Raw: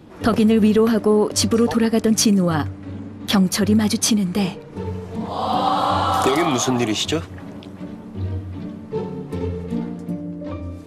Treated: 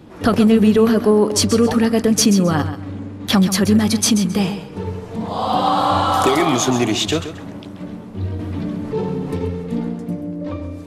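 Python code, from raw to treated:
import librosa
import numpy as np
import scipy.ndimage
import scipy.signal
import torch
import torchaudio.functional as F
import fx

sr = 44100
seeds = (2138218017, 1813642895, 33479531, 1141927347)

y = fx.echo_feedback(x, sr, ms=133, feedback_pct=24, wet_db=-11.0)
y = fx.env_flatten(y, sr, amount_pct=50, at=(8.39, 9.37))
y = F.gain(torch.from_numpy(y), 2.0).numpy()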